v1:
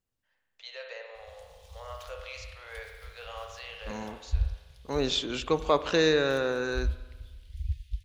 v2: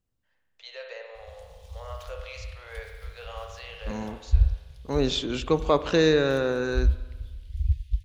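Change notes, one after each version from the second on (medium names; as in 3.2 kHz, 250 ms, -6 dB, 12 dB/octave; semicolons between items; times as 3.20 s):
master: add bass shelf 380 Hz +8 dB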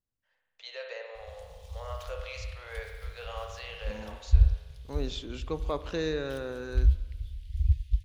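second voice -11.0 dB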